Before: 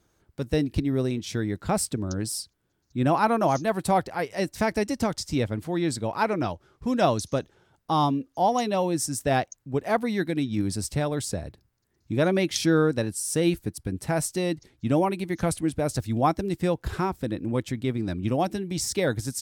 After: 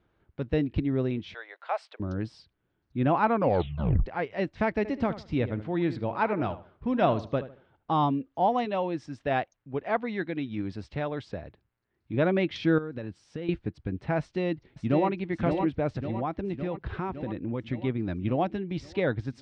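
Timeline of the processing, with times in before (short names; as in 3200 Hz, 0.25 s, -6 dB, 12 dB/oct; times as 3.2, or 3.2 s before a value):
1.34–2 steep high-pass 580 Hz
3.34 tape stop 0.72 s
4.77–7.98 darkening echo 75 ms, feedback 29%, low-pass 2600 Hz, level -13 dB
8.65–12.14 low shelf 330 Hz -6.5 dB
12.78–13.49 compressor 16:1, threshold -28 dBFS
14.2–15.1 echo throw 0.56 s, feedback 65%, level -5 dB
15.89–17.65 compressor 4:1, threshold -25 dBFS
whole clip: LPF 3200 Hz 24 dB/oct; gain -2 dB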